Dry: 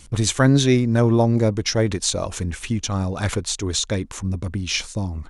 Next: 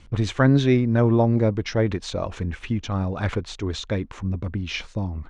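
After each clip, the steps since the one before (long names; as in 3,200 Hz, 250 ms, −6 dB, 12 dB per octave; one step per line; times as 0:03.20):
low-pass filter 2,800 Hz 12 dB per octave
level −1.5 dB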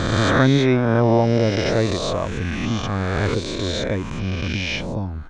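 peak hold with a rise ahead of every peak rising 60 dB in 1.97 s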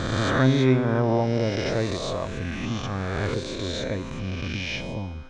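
tuned comb filter 130 Hz, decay 1.6 s, mix 70%
level +4 dB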